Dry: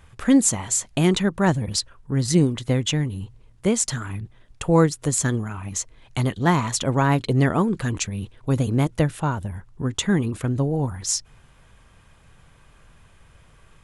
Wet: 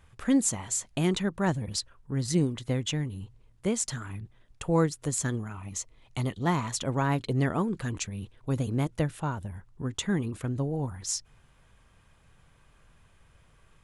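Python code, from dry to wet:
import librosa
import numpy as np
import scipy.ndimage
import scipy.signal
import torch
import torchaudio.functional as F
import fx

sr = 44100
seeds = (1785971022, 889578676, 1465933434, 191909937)

y = fx.notch(x, sr, hz=1600.0, q=6.9, at=(5.54, 6.52))
y = y * librosa.db_to_amplitude(-7.5)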